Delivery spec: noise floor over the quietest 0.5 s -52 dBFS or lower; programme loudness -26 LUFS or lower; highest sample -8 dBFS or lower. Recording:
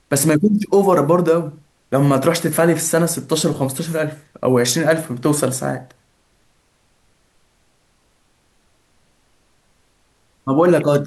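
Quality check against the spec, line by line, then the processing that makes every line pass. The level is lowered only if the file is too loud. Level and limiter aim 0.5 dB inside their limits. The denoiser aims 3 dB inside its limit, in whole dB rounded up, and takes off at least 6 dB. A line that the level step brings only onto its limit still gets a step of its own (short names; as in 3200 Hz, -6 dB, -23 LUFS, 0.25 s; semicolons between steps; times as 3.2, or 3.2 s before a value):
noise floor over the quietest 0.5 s -60 dBFS: OK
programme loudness -17.0 LUFS: fail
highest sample -4.5 dBFS: fail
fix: gain -9.5 dB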